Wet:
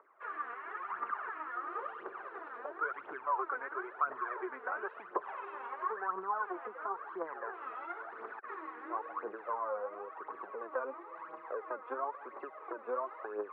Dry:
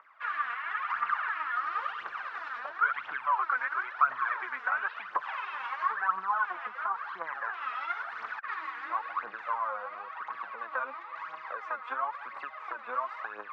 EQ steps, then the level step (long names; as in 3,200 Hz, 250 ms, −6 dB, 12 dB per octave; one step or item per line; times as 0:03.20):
resonant band-pass 390 Hz, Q 4.8
high-frequency loss of the air 180 metres
+16.0 dB